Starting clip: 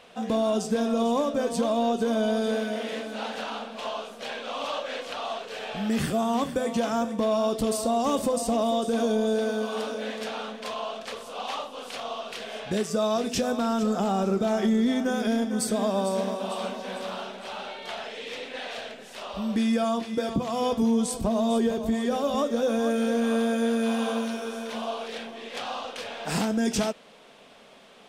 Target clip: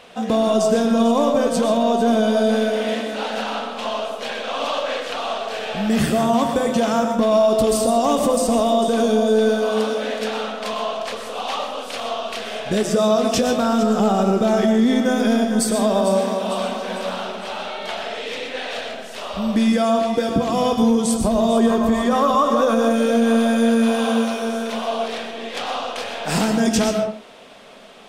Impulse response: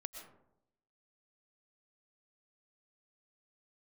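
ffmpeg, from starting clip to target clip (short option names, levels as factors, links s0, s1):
-filter_complex "[0:a]asettb=1/sr,asplit=3[s0][s1][s2];[s0]atrim=end=21.574[s3];[s1]atrim=start=21.57:end=22.76,asetpts=PTS-STARTPTS,afade=t=in:d=0.004:c=qsin,afade=t=out:st=1.186:d=0.004:c=qsin,equalizer=f=1100:t=o:w=0.56:g=13[s4];[s2]atrim=start=22.756[s5];[s3][s4]acrossfade=d=0.004:c1=hsin:c2=qsin[s6];[s6][s5]acrossfade=d=0.004:c1=qsin:c2=hsin[s7];[1:a]atrim=start_sample=2205,afade=t=out:st=0.35:d=0.01,atrim=end_sample=15876[s8];[s7][s8]afir=irnorm=-1:irlink=0,alimiter=level_in=8.41:limit=0.891:release=50:level=0:latency=1,volume=0.422"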